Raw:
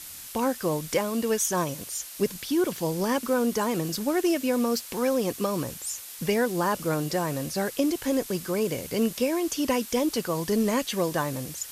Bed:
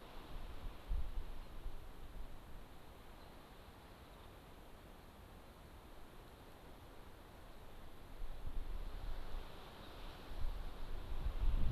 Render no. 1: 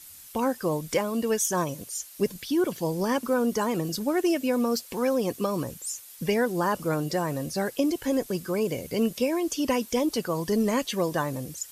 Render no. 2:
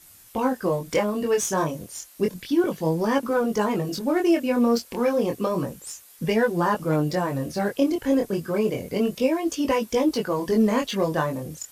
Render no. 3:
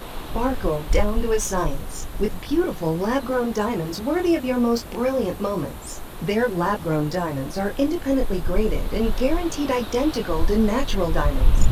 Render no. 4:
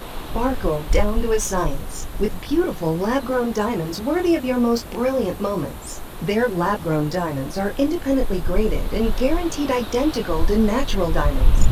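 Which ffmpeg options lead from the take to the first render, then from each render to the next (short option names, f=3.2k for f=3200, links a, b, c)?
-af "afftdn=nr=9:nf=-42"
-filter_complex "[0:a]asplit=2[a][b];[b]adynamicsmooth=sensitivity=7:basefreq=2.3k,volume=0.5dB[c];[a][c]amix=inputs=2:normalize=0,flanger=delay=18:depth=7.7:speed=0.31"
-filter_complex "[1:a]volume=20dB[a];[0:a][a]amix=inputs=2:normalize=0"
-af "volume=1.5dB"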